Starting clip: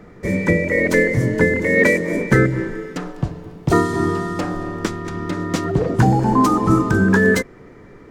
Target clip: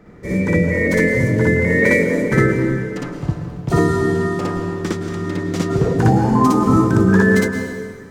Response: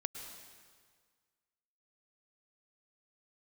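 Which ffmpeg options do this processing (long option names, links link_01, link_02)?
-filter_complex "[0:a]asplit=2[link_01][link_02];[link_02]highpass=68[link_03];[1:a]atrim=start_sample=2205,lowshelf=frequency=250:gain=7,adelay=59[link_04];[link_03][link_04]afir=irnorm=-1:irlink=0,volume=3dB[link_05];[link_01][link_05]amix=inputs=2:normalize=0,volume=-5dB"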